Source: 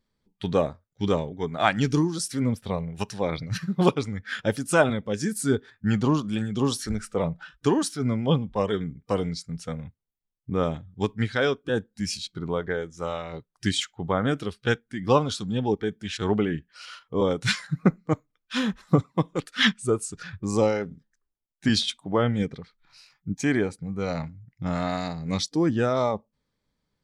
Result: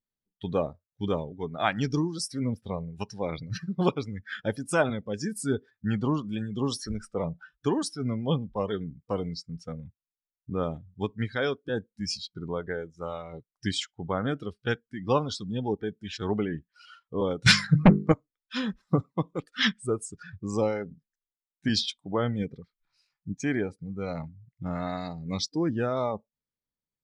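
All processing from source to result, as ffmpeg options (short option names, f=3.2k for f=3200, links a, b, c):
-filter_complex "[0:a]asettb=1/sr,asplit=3[a][b][c];[a]atrim=end=17.464[d];[b]atrim=start=17.46:end=18.12,asetpts=PTS-STARTPTS,afade=t=in:d=0.004:c=qsin,afade=t=out:st=0.656:d=0.004:c=qsin,bass=f=250:g=3,treble=f=4k:g=-2,bandreject=f=50:t=h:w=6,bandreject=f=100:t=h:w=6,bandreject=f=150:t=h:w=6,bandreject=f=200:t=h:w=6,bandreject=f=250:t=h:w=6,bandreject=f=300:t=h:w=6,bandreject=f=350:t=h:w=6,bandreject=f=400:t=h:w=6,bandreject=f=450:t=h:w=6,aeval=exprs='0.562*sin(PI/2*2.51*val(0)/0.562)':c=same[e];[c]atrim=start=18.116[f];[d][e]acrossfade=d=0.004:c1=hsin:c2=qsin[g];[g][f]acrossfade=d=0.004:c1=qsin:c2=hsin,afftdn=nr=15:nf=-38,adynamicequalizer=threshold=0.002:dfrequency=5100:dqfactor=4.8:tfrequency=5100:tqfactor=4.8:attack=5:release=100:ratio=0.375:range=4:mode=boostabove:tftype=bell,volume=-4.5dB"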